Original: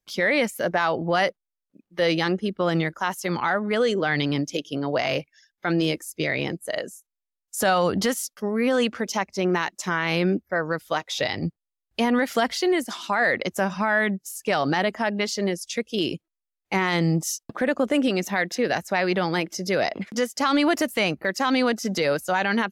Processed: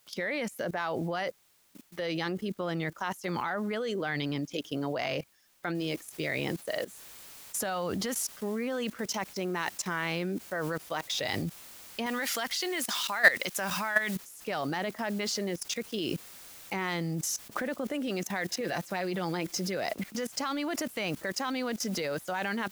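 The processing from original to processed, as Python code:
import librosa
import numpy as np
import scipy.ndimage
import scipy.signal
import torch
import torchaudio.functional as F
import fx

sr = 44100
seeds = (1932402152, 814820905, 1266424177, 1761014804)

y = fx.noise_floor_step(x, sr, seeds[0], at_s=5.75, before_db=-57, after_db=-47, tilt_db=0.0)
y = fx.tilt_shelf(y, sr, db=-7.0, hz=840.0, at=(12.06, 14.16))
y = fx.comb(y, sr, ms=5.8, depth=0.49, at=(18.6, 19.77))
y = fx.level_steps(y, sr, step_db=17)
y = y * 10.0 ** (2.0 / 20.0)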